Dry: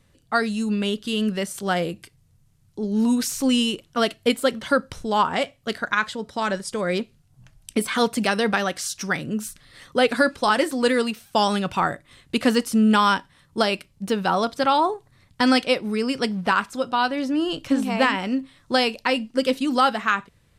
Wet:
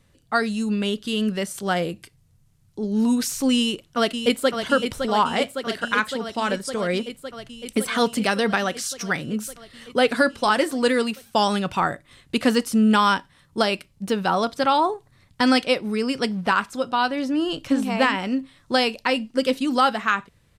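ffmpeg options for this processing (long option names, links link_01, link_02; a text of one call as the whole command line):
ffmpeg -i in.wav -filter_complex "[0:a]asplit=2[link_01][link_02];[link_02]afade=type=in:start_time=3.57:duration=0.01,afade=type=out:start_time=4.59:duration=0.01,aecho=0:1:560|1120|1680|2240|2800|3360|3920|4480|5040|5600|6160|6720:0.446684|0.357347|0.285877|0.228702|0.182962|0.146369|0.117095|0.0936763|0.0749411|0.0599529|0.0479623|0.0383698[link_03];[link_01][link_03]amix=inputs=2:normalize=0" out.wav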